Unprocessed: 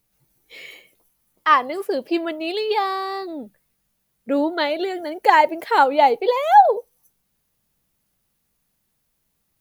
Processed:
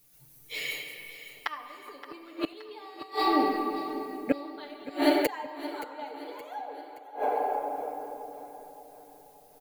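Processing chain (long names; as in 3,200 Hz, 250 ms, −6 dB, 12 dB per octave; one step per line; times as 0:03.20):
rectangular room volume 150 cubic metres, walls hard, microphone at 0.35 metres
gate with flip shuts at −13 dBFS, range −29 dB
high-shelf EQ 3,400 Hz +8.5 dB
comb filter 6.8 ms, depth 70%
repeating echo 572 ms, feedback 48%, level −14.5 dB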